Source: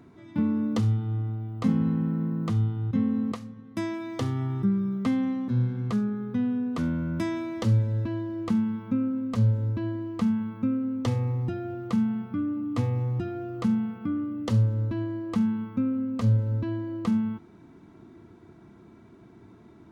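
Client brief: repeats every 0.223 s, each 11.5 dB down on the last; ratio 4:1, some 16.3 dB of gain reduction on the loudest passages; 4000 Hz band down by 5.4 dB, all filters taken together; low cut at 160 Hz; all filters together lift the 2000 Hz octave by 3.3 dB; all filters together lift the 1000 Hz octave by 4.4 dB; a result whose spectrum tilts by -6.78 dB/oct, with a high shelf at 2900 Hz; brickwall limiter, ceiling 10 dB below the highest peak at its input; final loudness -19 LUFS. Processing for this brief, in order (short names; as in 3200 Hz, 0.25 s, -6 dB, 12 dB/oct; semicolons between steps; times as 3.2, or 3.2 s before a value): HPF 160 Hz; bell 1000 Hz +5 dB; bell 2000 Hz +5.5 dB; high shelf 2900 Hz -6 dB; bell 4000 Hz -5 dB; compressor 4:1, threshold -42 dBFS; limiter -37 dBFS; feedback echo 0.223 s, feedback 27%, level -11.5 dB; gain +25.5 dB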